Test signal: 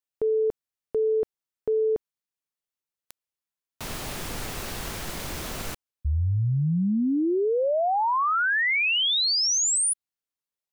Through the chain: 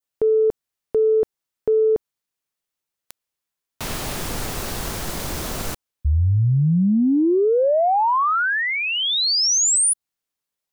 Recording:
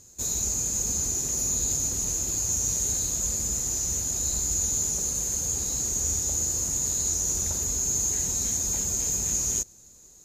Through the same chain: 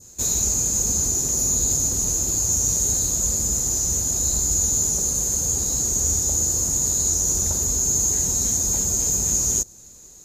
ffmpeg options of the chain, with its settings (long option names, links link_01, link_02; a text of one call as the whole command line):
ffmpeg -i in.wav -af "adynamicequalizer=threshold=0.00708:dfrequency=2400:dqfactor=0.96:tfrequency=2400:tqfactor=0.96:attack=5:release=100:ratio=0.375:range=3.5:mode=cutabove:tftype=bell,acontrast=67" out.wav